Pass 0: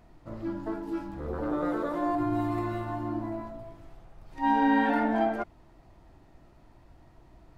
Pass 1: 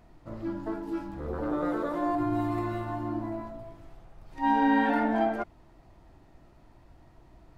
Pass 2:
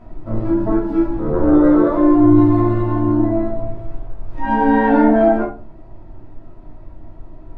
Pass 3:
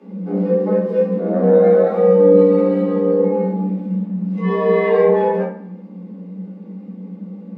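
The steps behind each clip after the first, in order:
nothing audible
LPF 1000 Hz 6 dB/oct; in parallel at +3 dB: vocal rider within 4 dB 2 s; on the sum: shoebox room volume 200 m³, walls furnished, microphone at 2.9 m
band shelf 900 Hz -9 dB; band-limited delay 79 ms, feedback 51%, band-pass 1100 Hz, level -14 dB; frequency shift +180 Hz

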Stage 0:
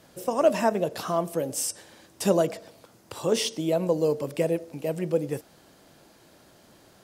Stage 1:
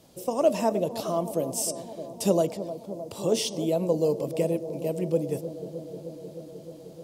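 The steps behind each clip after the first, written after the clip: bell 1600 Hz -12.5 dB 0.94 oct; on a send: analogue delay 0.308 s, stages 2048, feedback 80%, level -12.5 dB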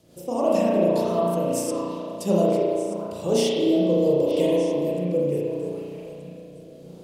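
delay with a stepping band-pass 0.307 s, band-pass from 410 Hz, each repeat 1.4 oct, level -2 dB; rotary speaker horn 5 Hz, later 0.75 Hz, at 2.65; spring tank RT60 1.7 s, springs 34 ms, chirp 55 ms, DRR -6 dB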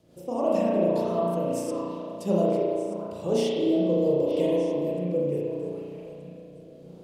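high shelf 3700 Hz -8 dB; gain -3 dB

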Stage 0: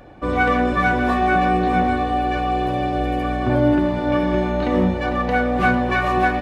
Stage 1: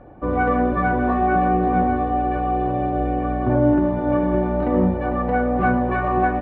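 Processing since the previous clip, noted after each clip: LPF 1200 Hz 12 dB/oct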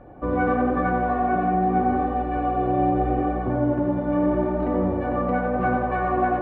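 vocal rider 0.5 s; tape echo 90 ms, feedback 80%, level -3 dB, low-pass 1900 Hz; gain -5 dB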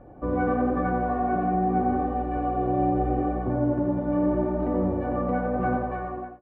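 ending faded out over 0.68 s; tilt shelf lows +4 dB, about 1300 Hz; gain -5.5 dB

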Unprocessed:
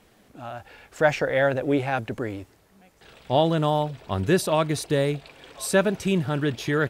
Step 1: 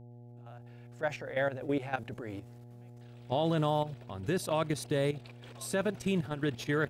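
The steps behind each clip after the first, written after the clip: opening faded in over 2.08 s; level quantiser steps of 12 dB; buzz 120 Hz, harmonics 7, -46 dBFS -8 dB/oct; gain -4.5 dB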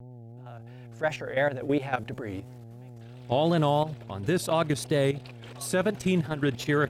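vibrato 2.9 Hz 82 cents; gain +5.5 dB

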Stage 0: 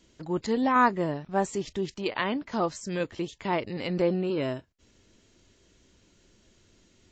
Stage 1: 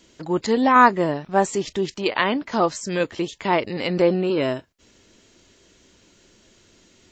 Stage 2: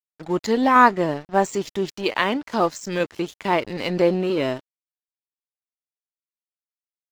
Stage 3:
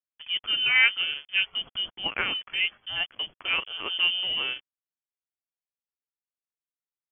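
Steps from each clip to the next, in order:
low shelf 160 Hz -9 dB; gain +8.5 dB
crossover distortion -40 dBFS
inverted band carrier 3300 Hz; gain -6.5 dB

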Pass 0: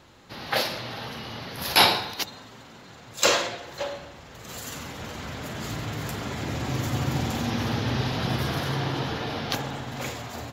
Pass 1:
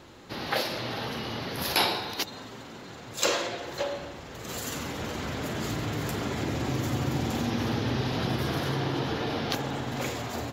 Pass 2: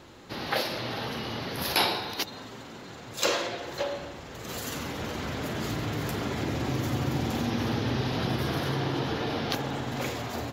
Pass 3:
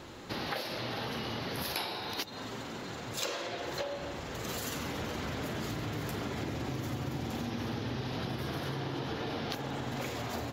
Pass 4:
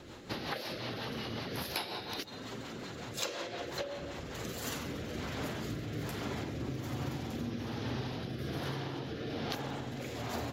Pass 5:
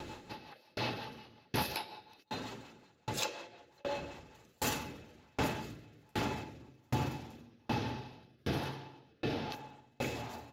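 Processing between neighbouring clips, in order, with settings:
bell 350 Hz +5 dB 1.1 oct; compressor 2:1, threshold -31 dBFS, peak gain reduction 10.5 dB; gain +2 dB
dynamic EQ 7400 Hz, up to -4 dB, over -53 dBFS, Q 3.4
compressor 6:1, threshold -36 dBFS, peak gain reduction 15.5 dB; gain +2.5 dB
rotary speaker horn 5.5 Hz, later 1.2 Hz, at 3.98
small resonant body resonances 860/2600 Hz, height 15 dB, ringing for 95 ms; dB-ramp tremolo decaying 1.3 Hz, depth 38 dB; gain +7 dB

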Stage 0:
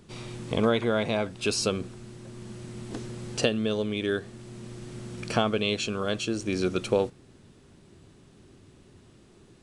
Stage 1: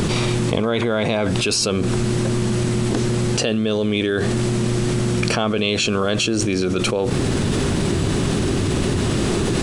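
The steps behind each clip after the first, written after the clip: fast leveller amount 100%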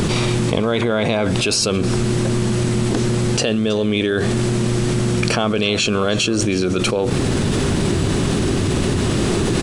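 echo 0.323 s -18.5 dB; gain +1.5 dB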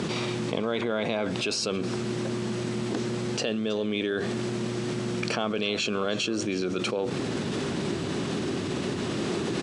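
BPF 170–6400 Hz; gain -9 dB

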